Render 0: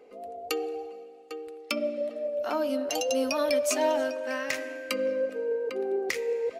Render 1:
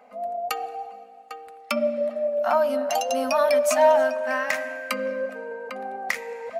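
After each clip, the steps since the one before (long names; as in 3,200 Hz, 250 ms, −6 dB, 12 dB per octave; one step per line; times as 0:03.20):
drawn EQ curve 130 Hz 0 dB, 240 Hz +11 dB, 340 Hz −22 dB, 650 Hz +14 dB, 1,800 Hz +10 dB, 2,800 Hz +3 dB, 5,200 Hz +2 dB, 12,000 Hz +6 dB
level −2.5 dB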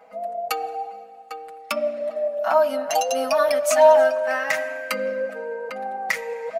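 comb filter 6.2 ms, depth 86%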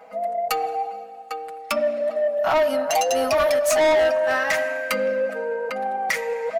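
soft clipping −19.5 dBFS, distortion −7 dB
level +4.5 dB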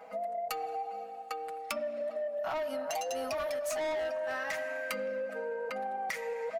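downward compressor 5 to 1, threshold −30 dBFS, peak gain reduction 12 dB
level −4 dB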